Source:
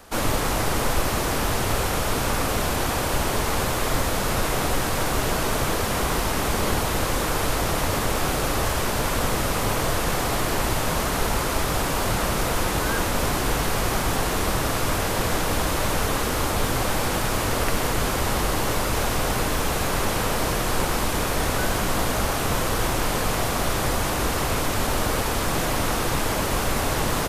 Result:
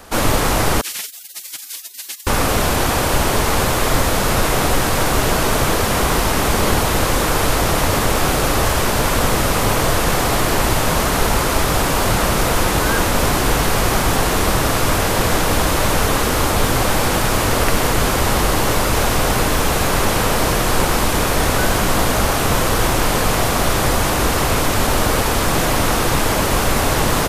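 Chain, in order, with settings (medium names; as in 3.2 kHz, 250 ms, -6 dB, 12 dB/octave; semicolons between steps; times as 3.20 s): 0.81–2.27 s: spectral gate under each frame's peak -30 dB weak; trim +7 dB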